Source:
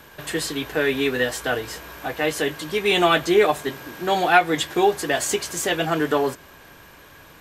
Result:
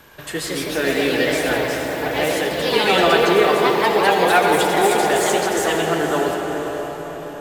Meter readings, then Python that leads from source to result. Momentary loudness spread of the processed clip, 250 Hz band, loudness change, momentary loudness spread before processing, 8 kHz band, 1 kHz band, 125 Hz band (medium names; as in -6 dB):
11 LU, +3.5 dB, +4.0 dB, 12 LU, +2.5 dB, +4.5 dB, +3.0 dB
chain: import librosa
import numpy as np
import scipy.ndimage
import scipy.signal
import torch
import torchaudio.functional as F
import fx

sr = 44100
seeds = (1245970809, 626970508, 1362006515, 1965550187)

y = fx.echo_diffused(x, sr, ms=538, feedback_pct=43, wet_db=-9.5)
y = fx.echo_pitch(y, sr, ms=196, semitones=2, count=3, db_per_echo=-3.0)
y = fx.rev_freeverb(y, sr, rt60_s=5.0, hf_ratio=0.3, predelay_ms=40, drr_db=2.5)
y = y * 10.0 ** (-1.0 / 20.0)